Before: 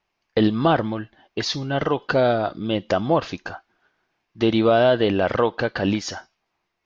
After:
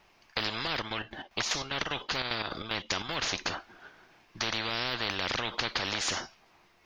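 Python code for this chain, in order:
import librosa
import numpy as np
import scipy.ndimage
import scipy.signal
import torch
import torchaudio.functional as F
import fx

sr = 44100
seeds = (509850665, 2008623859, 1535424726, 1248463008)

y = fx.chopper(x, sr, hz=5.0, depth_pct=65, duty_pct=55, at=(0.71, 3.09))
y = fx.spectral_comp(y, sr, ratio=10.0)
y = F.gain(torch.from_numpy(y), -5.5).numpy()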